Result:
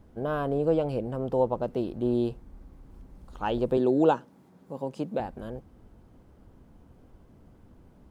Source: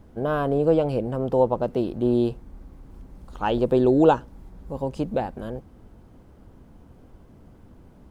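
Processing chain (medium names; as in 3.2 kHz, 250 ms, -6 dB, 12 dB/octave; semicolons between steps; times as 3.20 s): 3.77–5.20 s: high-pass 140 Hz 24 dB/octave; trim -5 dB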